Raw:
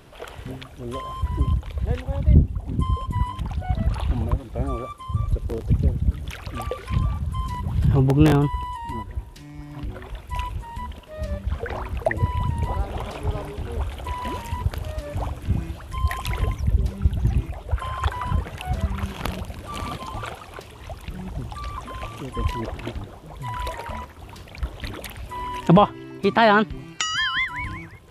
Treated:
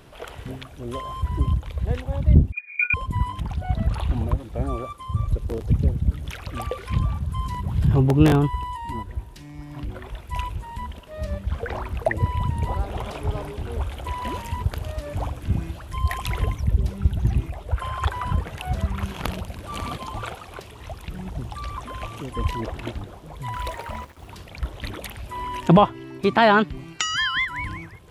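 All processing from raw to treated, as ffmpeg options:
-filter_complex "[0:a]asettb=1/sr,asplit=3[s0][s1][s2];[s0]atrim=end=2.524[s3];[s1]atrim=start=2.52:end=2.94,asetpts=PTS-STARTPTS,afade=t=in:d=0.004:c=qsin,afade=t=out:st=0.416:d=0.004:c=qsin,lowpass=f=2100:t=q:w=0.5098,lowpass=f=2100:t=q:w=0.6013,lowpass=f=2100:t=q:w=0.9,lowpass=f=2100:t=q:w=2.563,afreqshift=-2500,agate=range=0.251:threshold=0.0562:ratio=16:release=100:detection=peak,equalizer=f=170:w=0.53:g=-7.5[s4];[s2]atrim=start=2.936[s5];[s3][s4]acrossfade=d=0.004:c1=hsin:c2=qsin[s6];[s6][s5]acrossfade=d=0.004:c1=qsin:c2=hsin,asettb=1/sr,asplit=3[s7][s8][s9];[s7]atrim=end=23.534[s10];[s8]atrim=start=23.53:end=24.28,asetpts=PTS-STARTPTS,afade=t=in:d=0.004:c=qsin,afade=t=out:st=0.746:d=0.004:c=qsin,acrusher=bits=8:mix=0:aa=0.5,aeval=exprs='sgn(val(0))*max(abs(val(0))-0.00299,0)':c=same[s11];[s9]atrim=start=24.276[s12];[s10][s11]acrossfade=d=0.004:c1=hsin:c2=qsin[s13];[s13][s12]acrossfade=d=0.004:c1=qsin:c2=hsin"

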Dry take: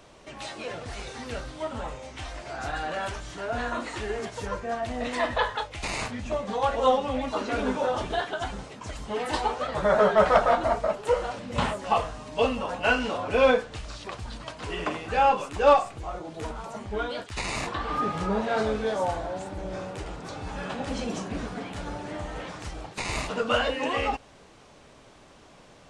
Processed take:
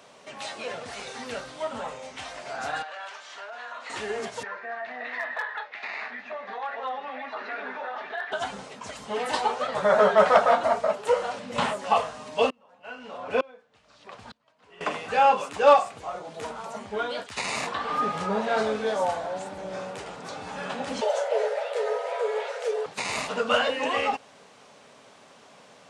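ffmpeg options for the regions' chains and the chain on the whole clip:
-filter_complex "[0:a]asettb=1/sr,asplit=3[s0][s1][s2];[s0]atrim=end=2.824[s3];[s1]atrim=start=2.82:end=3.9,asetpts=PTS-STARTPTS,afade=t=in:d=0.004:c=qsin,afade=t=out:st=1.076:d=0.004:c=qsin,acompressor=threshold=0.02:ratio=5:attack=3.2:release=140:knee=1:detection=peak,highpass=780,lowpass=5300[s4];[s2]atrim=start=3.896[s5];[s3][s4]acrossfade=d=0.004:c1=hsin:c2=qsin[s6];[s6][s5]acrossfade=d=0.004:c1=qsin:c2=hsin,asettb=1/sr,asplit=3[s7][s8][s9];[s7]atrim=end=4.434[s10];[s8]atrim=start=4.43:end=8.32,asetpts=PTS-STARTPTS,afade=t=in:d=0.004:c=qsin,afade=t=out:st=3.886:d=0.004:c=qsin,highpass=480,equalizer=f=520:t=q:w=4:g=-9,equalizer=f=1000:t=q:w=4:g=-4,equalizer=f=1800:t=q:w=4:g=9,equalizer=f=3100:t=q:w=4:g=-9,lowpass=f=3600:w=0.5412,lowpass=f=3600:w=1.3066,acompressor=threshold=0.0178:ratio=2:attack=3.2:release=140:knee=1:detection=peak,asoftclip=type=hard:threshold=0.0562[s11];[s9]atrim=start=8.316[s12];[s10][s11]acrossfade=d=0.004:c1=hsin:c2=qsin[s13];[s13][s12]acrossfade=d=0.004:c1=qsin:c2=hsin,asettb=1/sr,asplit=3[s14][s15][s16];[s14]atrim=end=12.504[s17];[s15]atrim=start=12.5:end=14.81,asetpts=PTS-STARTPTS,afade=t=in:d=0.004:c=qsin,afade=t=out:st=2.306:d=0.004:c=qsin,aemphasis=mode=reproduction:type=cd,aeval=exprs='val(0)*pow(10,-34*if(lt(mod(-1.1*n/s,1),2*abs(-1.1)/1000),1-mod(-1.1*n/s,1)/(2*abs(-1.1)/1000),(mod(-1.1*n/s,1)-2*abs(-1.1)/1000)/(1-2*abs(-1.1)/1000))/20)':c=same[s18];[s16]atrim=start=14.806[s19];[s17][s18]acrossfade=d=0.004:c1=hsin:c2=qsin[s20];[s20][s19]acrossfade=d=0.004:c1=qsin:c2=hsin,asettb=1/sr,asplit=3[s21][s22][s23];[s21]atrim=end=21.014[s24];[s22]atrim=start=21.01:end=22.86,asetpts=PTS-STARTPTS,afade=t=in:d=0.004:c=qsin,afade=t=out:st=1.846:d=0.004:c=qsin,bass=f=250:g=10,treble=f=4000:g=-3,afreqshift=380,asuperstop=centerf=1100:order=4:qfactor=6.6[s25];[s23]atrim=start=22.856[s26];[s24][s25]acrossfade=d=0.004:c1=hsin:c2=qsin[s27];[s27][s26]acrossfade=d=0.004:c1=qsin:c2=hsin,highpass=220,equalizer=f=330:t=o:w=0.21:g=-15,volume=1.26"

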